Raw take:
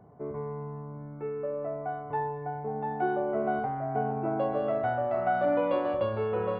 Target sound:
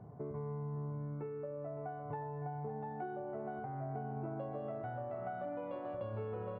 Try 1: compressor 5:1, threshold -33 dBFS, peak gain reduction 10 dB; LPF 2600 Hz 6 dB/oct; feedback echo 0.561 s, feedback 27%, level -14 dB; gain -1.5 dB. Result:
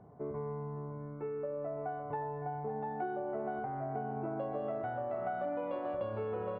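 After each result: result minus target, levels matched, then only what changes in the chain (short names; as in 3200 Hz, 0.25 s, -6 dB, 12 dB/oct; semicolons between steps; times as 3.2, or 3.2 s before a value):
125 Hz band -6.0 dB; compressor: peak gain reduction -5.5 dB
add after LPF: bell 120 Hz +8 dB 1.2 oct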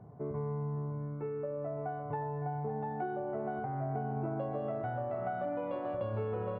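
compressor: peak gain reduction -5.5 dB
change: compressor 5:1, threshold -40 dBFS, peak gain reduction 15.5 dB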